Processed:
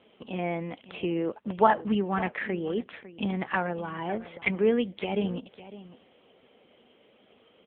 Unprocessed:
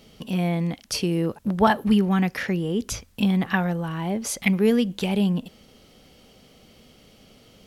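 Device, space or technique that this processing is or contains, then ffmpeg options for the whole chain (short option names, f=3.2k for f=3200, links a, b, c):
satellite phone: -af "highpass=330,lowpass=3.2k,aecho=1:1:553:0.168" -ar 8000 -c:a libopencore_amrnb -b:a 6700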